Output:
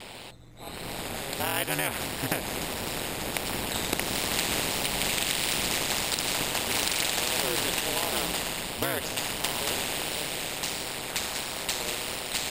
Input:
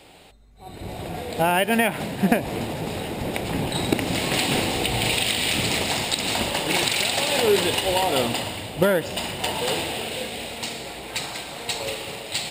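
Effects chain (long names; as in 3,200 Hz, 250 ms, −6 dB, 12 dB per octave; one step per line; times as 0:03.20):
pitch vibrato 1.5 Hz 57 cents
ring modulation 70 Hz
every bin compressed towards the loudest bin 2 to 1
level −2 dB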